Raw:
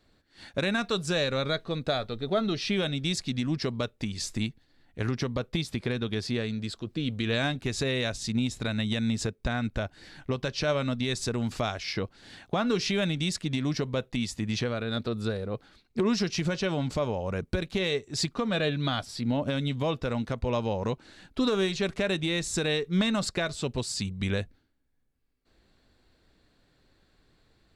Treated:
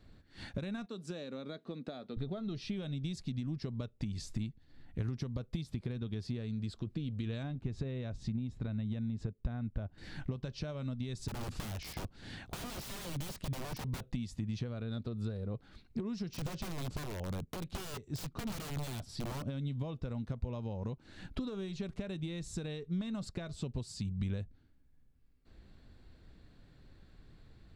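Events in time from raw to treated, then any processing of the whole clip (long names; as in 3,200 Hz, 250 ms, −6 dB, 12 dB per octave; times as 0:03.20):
0:00.86–0:02.17: four-pole ladder high-pass 200 Hz, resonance 40%
0:05.07–0:05.63: high-shelf EQ 5,400 Hz +6 dB
0:07.43–0:09.98: low-pass filter 1,600 Hz 6 dB per octave
0:11.28–0:14.13: wrap-around overflow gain 28 dB
0:16.29–0:19.46: wrap-around overflow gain 24.5 dB
whole clip: dynamic equaliser 1,900 Hz, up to −5 dB, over −47 dBFS, Q 1.1; downward compressor 6 to 1, threshold −42 dBFS; bass and treble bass +10 dB, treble −4 dB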